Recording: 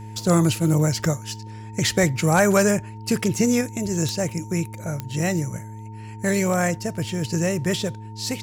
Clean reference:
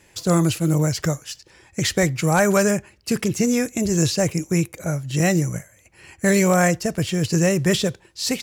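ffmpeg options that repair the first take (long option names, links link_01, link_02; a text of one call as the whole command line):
ffmpeg -i in.wav -af "adeclick=threshold=4,bandreject=frequency=108.1:width_type=h:width=4,bandreject=frequency=216.2:width_type=h:width=4,bandreject=frequency=324.3:width_type=h:width=4,bandreject=frequency=432.4:width_type=h:width=4,bandreject=frequency=910:width=30,asetnsamples=nb_out_samples=441:pad=0,asendcmd='3.61 volume volume 4.5dB',volume=0dB" out.wav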